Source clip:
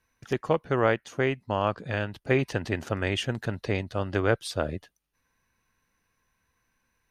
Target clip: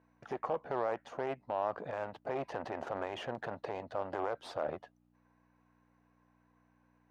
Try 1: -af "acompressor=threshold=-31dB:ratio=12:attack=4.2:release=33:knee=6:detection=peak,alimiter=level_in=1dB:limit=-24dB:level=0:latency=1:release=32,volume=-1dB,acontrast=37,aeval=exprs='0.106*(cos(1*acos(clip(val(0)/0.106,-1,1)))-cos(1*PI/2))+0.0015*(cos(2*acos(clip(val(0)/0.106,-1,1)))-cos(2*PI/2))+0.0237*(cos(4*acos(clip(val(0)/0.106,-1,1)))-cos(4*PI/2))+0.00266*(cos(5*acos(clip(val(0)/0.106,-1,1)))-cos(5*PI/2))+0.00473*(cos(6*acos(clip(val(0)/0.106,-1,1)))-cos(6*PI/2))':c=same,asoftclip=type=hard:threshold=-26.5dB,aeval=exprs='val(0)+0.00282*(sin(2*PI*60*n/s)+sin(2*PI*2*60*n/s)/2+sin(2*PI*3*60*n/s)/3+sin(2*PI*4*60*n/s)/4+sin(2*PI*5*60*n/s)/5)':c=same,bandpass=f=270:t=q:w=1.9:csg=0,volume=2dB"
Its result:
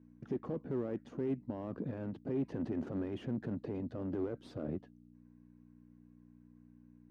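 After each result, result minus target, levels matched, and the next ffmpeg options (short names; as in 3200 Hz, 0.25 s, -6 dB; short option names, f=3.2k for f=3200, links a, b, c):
1000 Hz band -15.0 dB; hard clip: distortion +17 dB
-af "acompressor=threshold=-31dB:ratio=12:attack=4.2:release=33:knee=6:detection=peak,alimiter=level_in=1dB:limit=-24dB:level=0:latency=1:release=32,volume=-1dB,acontrast=37,aeval=exprs='0.106*(cos(1*acos(clip(val(0)/0.106,-1,1)))-cos(1*PI/2))+0.0015*(cos(2*acos(clip(val(0)/0.106,-1,1)))-cos(2*PI/2))+0.0237*(cos(4*acos(clip(val(0)/0.106,-1,1)))-cos(4*PI/2))+0.00266*(cos(5*acos(clip(val(0)/0.106,-1,1)))-cos(5*PI/2))+0.00473*(cos(6*acos(clip(val(0)/0.106,-1,1)))-cos(6*PI/2))':c=same,asoftclip=type=hard:threshold=-26.5dB,aeval=exprs='val(0)+0.00282*(sin(2*PI*60*n/s)+sin(2*PI*2*60*n/s)/2+sin(2*PI*3*60*n/s)/3+sin(2*PI*4*60*n/s)/4+sin(2*PI*5*60*n/s)/5)':c=same,bandpass=f=720:t=q:w=1.9:csg=0,volume=2dB"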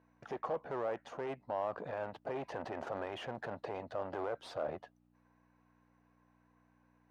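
hard clip: distortion +17 dB
-af "acompressor=threshold=-31dB:ratio=12:attack=4.2:release=33:knee=6:detection=peak,alimiter=level_in=1dB:limit=-24dB:level=0:latency=1:release=32,volume=-1dB,acontrast=37,aeval=exprs='0.106*(cos(1*acos(clip(val(0)/0.106,-1,1)))-cos(1*PI/2))+0.0015*(cos(2*acos(clip(val(0)/0.106,-1,1)))-cos(2*PI/2))+0.0237*(cos(4*acos(clip(val(0)/0.106,-1,1)))-cos(4*PI/2))+0.00266*(cos(5*acos(clip(val(0)/0.106,-1,1)))-cos(5*PI/2))+0.00473*(cos(6*acos(clip(val(0)/0.106,-1,1)))-cos(6*PI/2))':c=same,asoftclip=type=hard:threshold=-20dB,aeval=exprs='val(0)+0.00282*(sin(2*PI*60*n/s)+sin(2*PI*2*60*n/s)/2+sin(2*PI*3*60*n/s)/3+sin(2*PI*4*60*n/s)/4+sin(2*PI*5*60*n/s)/5)':c=same,bandpass=f=720:t=q:w=1.9:csg=0,volume=2dB"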